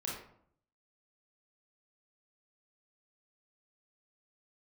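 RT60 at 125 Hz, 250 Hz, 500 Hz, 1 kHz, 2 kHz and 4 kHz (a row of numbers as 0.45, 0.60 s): 0.85, 0.75, 0.65, 0.65, 0.50, 0.35 s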